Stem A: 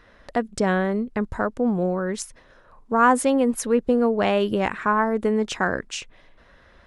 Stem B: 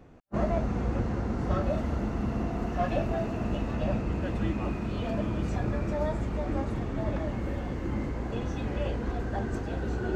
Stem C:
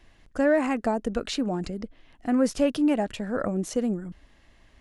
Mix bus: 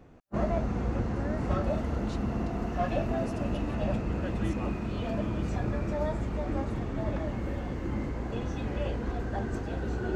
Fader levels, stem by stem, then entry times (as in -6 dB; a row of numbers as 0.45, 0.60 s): off, -1.0 dB, -17.5 dB; off, 0.00 s, 0.80 s